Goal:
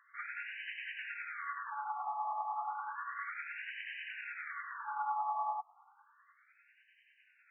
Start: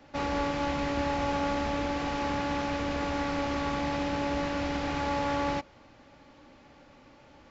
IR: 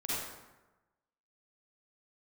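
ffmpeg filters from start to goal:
-af "tremolo=f=10:d=0.42,afftfilt=real='re*between(b*sr/1024,900*pow(2200/900,0.5+0.5*sin(2*PI*0.32*pts/sr))/1.41,900*pow(2200/900,0.5+0.5*sin(2*PI*0.32*pts/sr))*1.41)':imag='im*between(b*sr/1024,900*pow(2200/900,0.5+0.5*sin(2*PI*0.32*pts/sr))/1.41,900*pow(2200/900,0.5+0.5*sin(2*PI*0.32*pts/sr))*1.41)':win_size=1024:overlap=0.75"

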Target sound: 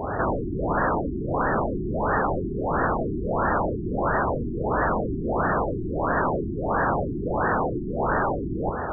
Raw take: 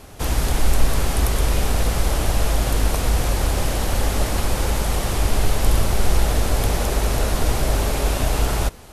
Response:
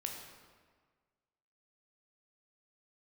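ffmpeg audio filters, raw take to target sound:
-filter_complex "[0:a]highpass=61,aeval=exprs='0.376*sin(PI/2*8.91*val(0)/0.376)':channel_layout=same,asplit=2[link_01][link_02];[link_02]highpass=frequency=720:poles=1,volume=9dB,asoftclip=type=tanh:threshold=-8dB[link_03];[link_01][link_03]amix=inputs=2:normalize=0,lowpass=frequency=5200:poles=1,volume=-6dB,afftfilt=real='re*lt(b*sr/1024,390*pow(1900/390,0.5+0.5*sin(2*PI*1.5*pts/sr)))':imag='im*lt(b*sr/1024,390*pow(1900/390,0.5+0.5*sin(2*PI*1.5*pts/sr)))':win_size=1024:overlap=0.75,volume=-6dB"

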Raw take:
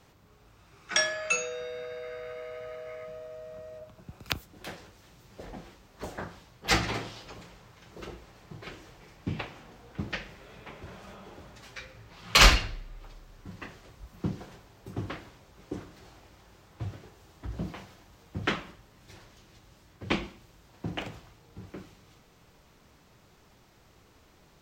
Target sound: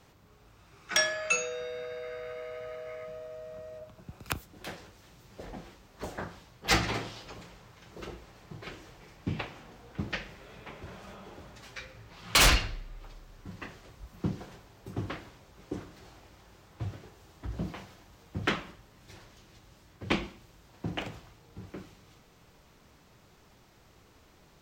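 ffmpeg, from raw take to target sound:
ffmpeg -i in.wav -af "aeval=exprs='0.2*(abs(mod(val(0)/0.2+3,4)-2)-1)':channel_layout=same" out.wav

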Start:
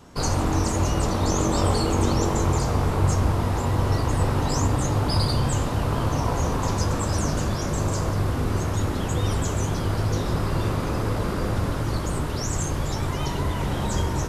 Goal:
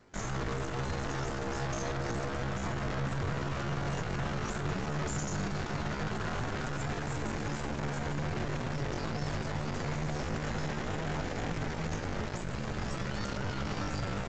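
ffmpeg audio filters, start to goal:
ffmpeg -i in.wav -af "alimiter=limit=-18.5dB:level=0:latency=1:release=17,acrusher=bits=8:mode=log:mix=0:aa=0.000001,asetrate=64194,aresample=44100,atempo=0.686977,aeval=exprs='0.126*(cos(1*acos(clip(val(0)/0.126,-1,1)))-cos(1*PI/2))+0.0224*(cos(3*acos(clip(val(0)/0.126,-1,1)))-cos(3*PI/2))+0.0141*(cos(6*acos(clip(val(0)/0.126,-1,1)))-cos(6*PI/2))':channel_layout=same,aresample=16000,aresample=44100,volume=-6dB" out.wav

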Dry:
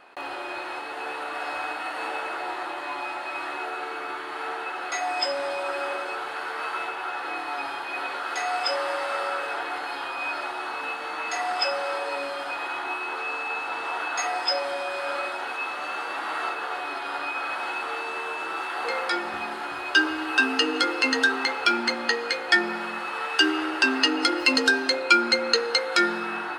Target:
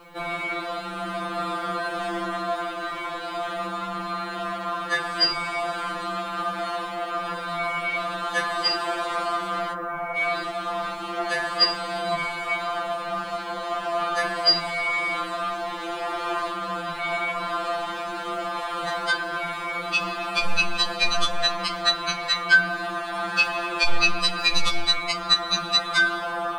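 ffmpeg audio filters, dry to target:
ffmpeg -i in.wav -filter_complex "[0:a]asplit=3[link_01][link_02][link_03];[link_01]afade=type=out:start_time=9.72:duration=0.02[link_04];[link_02]lowpass=frequency=1900:width=0.5412,lowpass=frequency=1900:width=1.3066,afade=type=in:start_time=9.72:duration=0.02,afade=type=out:start_time=10.15:duration=0.02[link_05];[link_03]afade=type=in:start_time=10.15:duration=0.02[link_06];[link_04][link_05][link_06]amix=inputs=3:normalize=0,afreqshift=-260,acrusher=bits=10:mix=0:aa=0.000001,alimiter=level_in=10.5dB:limit=-1dB:release=50:level=0:latency=1,afftfilt=real='re*2.83*eq(mod(b,8),0)':imag='im*2.83*eq(mod(b,8),0)':win_size=2048:overlap=0.75,volume=-4.5dB" out.wav

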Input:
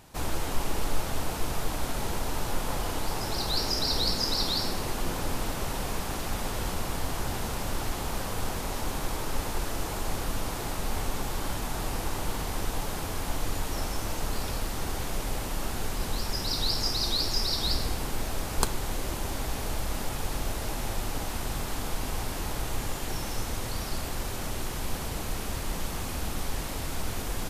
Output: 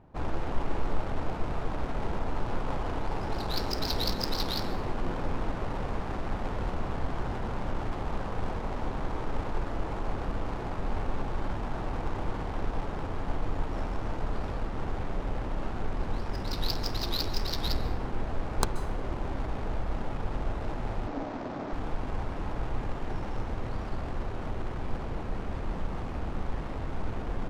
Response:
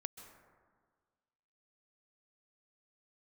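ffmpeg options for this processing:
-filter_complex "[0:a]adynamicsmooth=sensitivity=3.5:basefreq=960,asettb=1/sr,asplit=3[link_01][link_02][link_03];[link_01]atrim=end=21.074[link_04];[link_02]atrim=start=21.07:end=21.73,asetpts=PTS-STARTPTS,afade=type=in:duration=0.004:curve=qsin,afade=type=out:start_time=0.656:duration=0.004:curve=qsin,highpass=180,equalizer=frequency=280:width_type=q:width=4:gain=9,equalizer=frequency=630:width_type=q:width=4:gain=6,equalizer=frequency=2900:width_type=q:width=4:gain=-3,lowpass=frequency=7100:width=0.5412,lowpass=frequency=7100:width=1.3066[link_05];[link_03]atrim=start=21.726[link_06];[link_04][link_05]acrossfade=duration=0.004:curve1=hsin:curve2=qsin[link_07];[link_07][link_06]acrossfade=duration=0.004:curve1=qsin:curve2=hsin,asplit=2[link_08][link_09];[1:a]atrim=start_sample=2205[link_10];[link_09][link_10]afir=irnorm=-1:irlink=0,volume=7dB[link_11];[link_08][link_11]amix=inputs=2:normalize=0,volume=-8dB"

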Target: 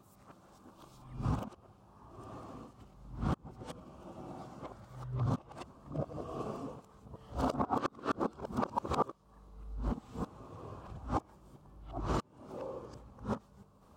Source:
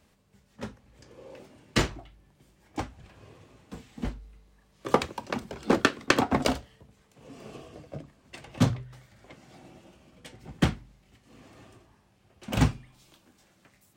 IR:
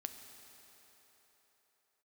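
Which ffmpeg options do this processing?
-af "areverse,acompressor=threshold=-34dB:ratio=16,highshelf=frequency=1500:width_type=q:width=3:gain=-8,volume=4dB"

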